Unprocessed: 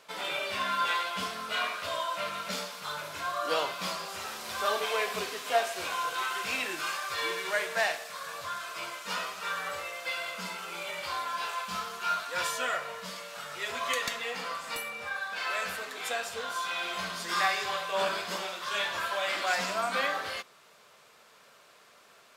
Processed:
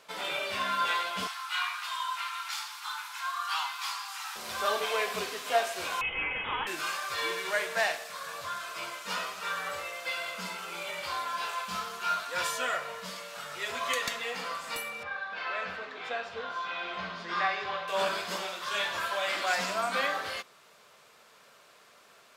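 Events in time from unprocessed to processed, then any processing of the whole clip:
1.27–4.36 s: steep high-pass 780 Hz 96 dB/octave
6.01–6.67 s: frequency inversion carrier 3.6 kHz
15.03–17.88 s: distance through air 230 m

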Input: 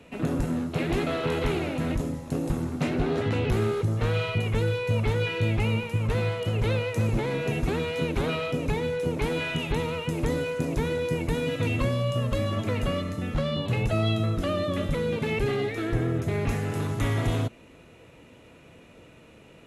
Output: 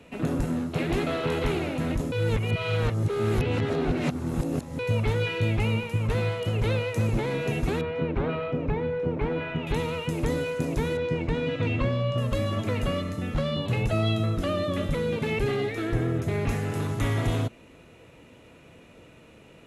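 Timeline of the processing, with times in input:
2.12–4.79 s: reverse
7.81–9.67 s: low-pass 1.8 kHz
10.97–12.18 s: low-pass 3.8 kHz

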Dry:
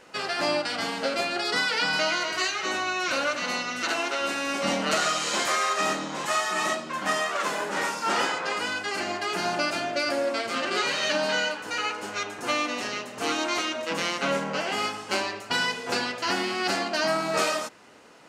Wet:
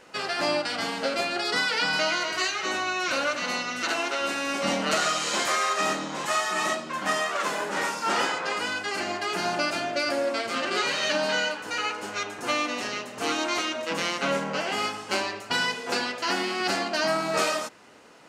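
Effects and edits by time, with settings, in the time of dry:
15.75–16.61 s: high-pass 160 Hz

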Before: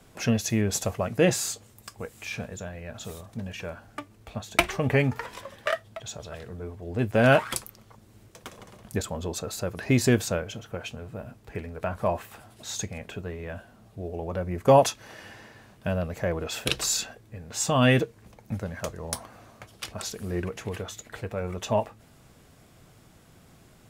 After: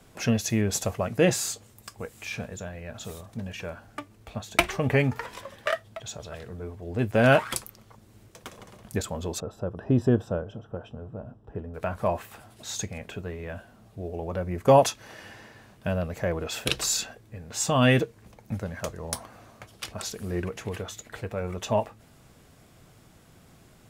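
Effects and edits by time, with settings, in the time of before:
9.40–11.74 s: boxcar filter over 20 samples

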